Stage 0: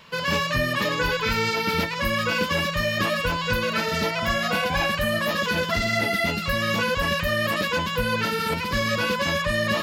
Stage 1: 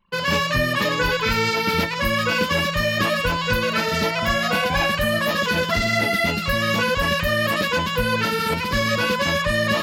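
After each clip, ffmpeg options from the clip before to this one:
-af "anlmdn=0.631,volume=1.41"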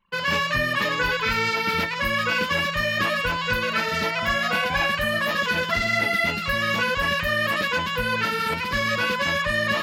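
-af "equalizer=f=1800:t=o:w=2.1:g=6.5,volume=0.473"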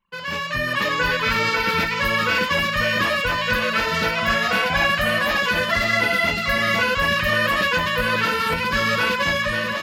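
-filter_complex "[0:a]dynaudnorm=f=240:g=5:m=2.82,asplit=2[s0][s1];[s1]aecho=0:1:544:0.447[s2];[s0][s2]amix=inputs=2:normalize=0,volume=0.531"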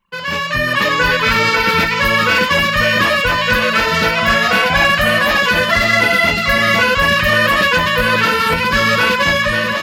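-af "asoftclip=type=hard:threshold=0.237,volume=2.24"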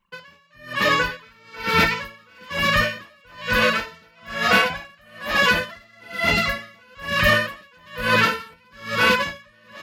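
-af "aeval=exprs='val(0)*pow(10,-37*(0.5-0.5*cos(2*PI*1.1*n/s))/20)':c=same,volume=0.794"

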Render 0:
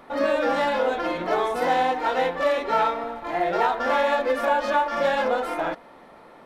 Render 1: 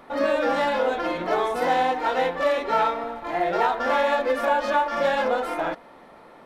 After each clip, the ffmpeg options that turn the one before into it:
-af anull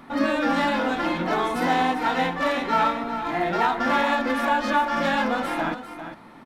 -filter_complex "[0:a]equalizer=f=125:t=o:w=1:g=5,equalizer=f=250:t=o:w=1:g=7,equalizer=f=500:t=o:w=1:g=-10,asplit=2[s0][s1];[s1]aecho=0:1:399:0.299[s2];[s0][s2]amix=inputs=2:normalize=0,volume=1.33"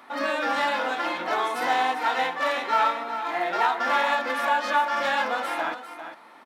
-af "highpass=540"

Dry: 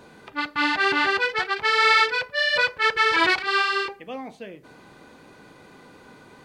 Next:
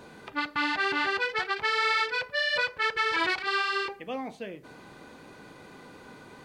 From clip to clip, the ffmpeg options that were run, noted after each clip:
-af "acompressor=threshold=0.0447:ratio=2.5"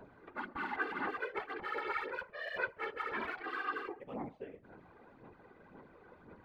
-af "lowpass=1600,aphaser=in_gain=1:out_gain=1:delay=2.6:decay=0.51:speed=1.9:type=sinusoidal,afftfilt=real='hypot(re,im)*cos(2*PI*random(0))':imag='hypot(re,im)*sin(2*PI*random(1))':win_size=512:overlap=0.75,volume=0.596"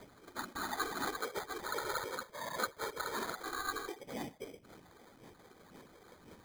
-af "acrusher=samples=16:mix=1:aa=0.000001"

